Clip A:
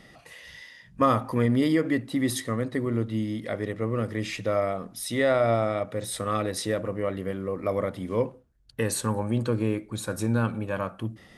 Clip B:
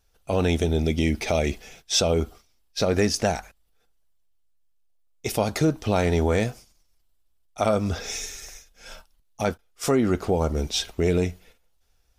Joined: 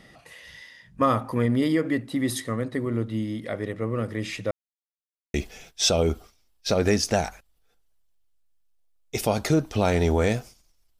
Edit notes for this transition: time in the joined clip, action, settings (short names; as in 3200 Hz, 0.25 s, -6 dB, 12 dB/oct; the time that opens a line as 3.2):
clip A
4.51–5.34 mute
5.34 switch to clip B from 1.45 s